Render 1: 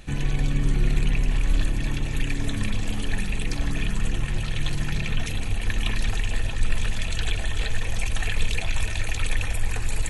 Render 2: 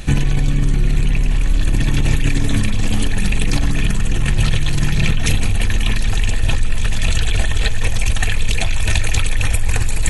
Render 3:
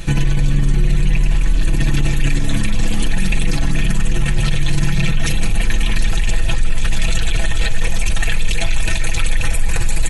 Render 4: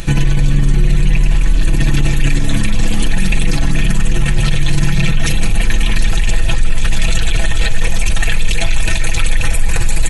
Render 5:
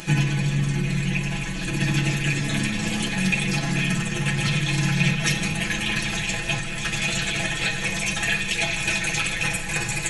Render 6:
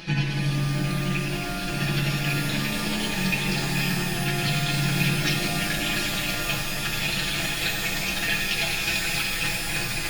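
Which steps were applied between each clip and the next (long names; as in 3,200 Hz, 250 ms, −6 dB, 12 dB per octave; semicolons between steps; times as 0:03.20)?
in parallel at +2 dB: compressor whose output falls as the input rises −26 dBFS, ratio −0.5; on the sum: bass and treble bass +3 dB, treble +3 dB; level +1.5 dB
brickwall limiter −8.5 dBFS, peak gain reduction 7 dB; comb filter 6 ms
upward compression, threshold −32 dBFS; level +3 dB
convolution reverb RT60 1.0 s, pre-delay 3 ms, DRR −2 dB; level −7.5 dB
high shelf with overshoot 6,000 Hz −8 dB, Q 3; reverb with rising layers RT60 3.3 s, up +12 semitones, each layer −2 dB, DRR 5.5 dB; level −4.5 dB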